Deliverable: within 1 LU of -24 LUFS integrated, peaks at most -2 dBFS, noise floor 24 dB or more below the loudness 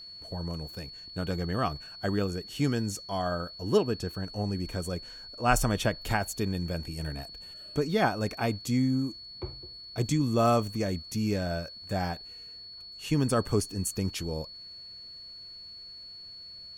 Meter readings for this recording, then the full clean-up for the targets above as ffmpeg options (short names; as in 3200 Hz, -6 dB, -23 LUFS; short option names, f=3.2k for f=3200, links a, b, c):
steady tone 4400 Hz; tone level -43 dBFS; loudness -30.5 LUFS; peak -10.0 dBFS; loudness target -24.0 LUFS
-> -af "bandreject=f=4.4k:w=30"
-af "volume=6.5dB"